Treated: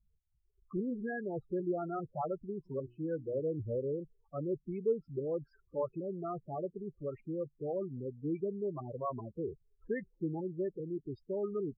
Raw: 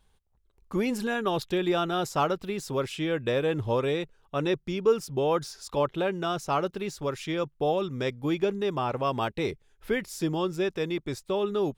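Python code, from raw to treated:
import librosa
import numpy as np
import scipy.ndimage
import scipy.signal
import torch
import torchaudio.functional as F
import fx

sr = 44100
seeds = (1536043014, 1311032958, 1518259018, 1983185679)

y = fx.filter_lfo_lowpass(x, sr, shape='saw_up', hz=2.5, low_hz=290.0, high_hz=3300.0, q=0.79)
y = fx.spec_topn(y, sr, count=8)
y = fx.hum_notches(y, sr, base_hz=60, count=6, at=(2.65, 3.4), fade=0.02)
y = y * 10.0 ** (-7.5 / 20.0)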